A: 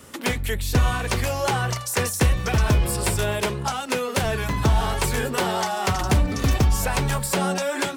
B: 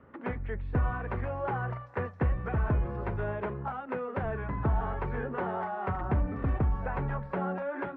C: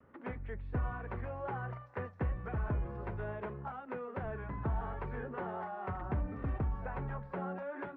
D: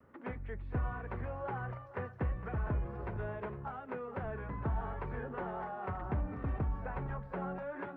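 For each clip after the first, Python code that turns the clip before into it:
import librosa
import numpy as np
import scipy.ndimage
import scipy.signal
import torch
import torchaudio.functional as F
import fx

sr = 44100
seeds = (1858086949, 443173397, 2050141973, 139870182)

y1 = scipy.signal.sosfilt(scipy.signal.butter(4, 1700.0, 'lowpass', fs=sr, output='sos'), x)
y1 = y1 * 10.0 ** (-8.5 / 20.0)
y2 = fx.vibrato(y1, sr, rate_hz=0.66, depth_cents=25.0)
y2 = y2 * 10.0 ** (-7.0 / 20.0)
y3 = y2 + 10.0 ** (-14.5 / 20.0) * np.pad(y2, (int(460 * sr / 1000.0), 0))[:len(y2)]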